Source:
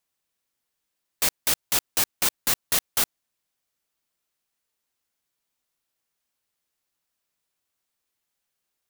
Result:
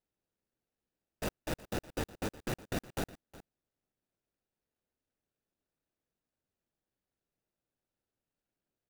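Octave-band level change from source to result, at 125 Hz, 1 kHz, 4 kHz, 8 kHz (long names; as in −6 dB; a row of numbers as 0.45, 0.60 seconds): +3.5, −9.0, −19.0, −23.0 decibels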